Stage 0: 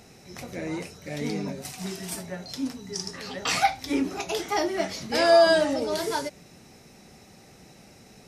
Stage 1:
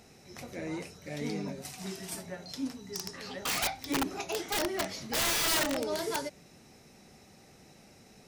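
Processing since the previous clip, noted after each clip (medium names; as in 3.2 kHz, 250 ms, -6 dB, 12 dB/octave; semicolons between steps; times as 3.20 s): integer overflow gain 18.5 dB; hum notches 60/120/180 Hz; trim -5 dB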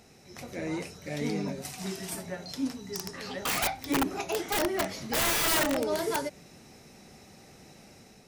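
dynamic bell 4.8 kHz, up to -5 dB, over -45 dBFS, Q 0.77; level rider gain up to 4 dB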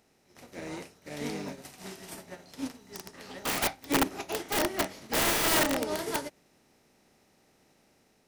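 spectral levelling over time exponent 0.6; upward expansion 2.5:1, over -39 dBFS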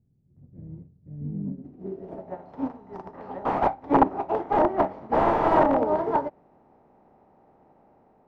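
low-pass sweep 130 Hz -> 880 Hz, 1.23–2.39 s; trim +5.5 dB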